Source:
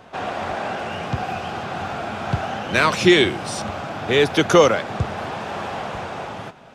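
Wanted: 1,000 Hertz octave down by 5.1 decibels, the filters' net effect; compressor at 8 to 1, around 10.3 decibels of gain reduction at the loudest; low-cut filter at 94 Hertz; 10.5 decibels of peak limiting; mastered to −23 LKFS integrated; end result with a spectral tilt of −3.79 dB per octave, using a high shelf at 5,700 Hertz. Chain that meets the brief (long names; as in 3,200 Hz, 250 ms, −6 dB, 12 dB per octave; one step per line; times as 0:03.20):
high-pass filter 94 Hz
parametric band 1,000 Hz −7.5 dB
high-shelf EQ 5,700 Hz +8 dB
downward compressor 8 to 1, threshold −20 dBFS
level +7 dB
brickwall limiter −12 dBFS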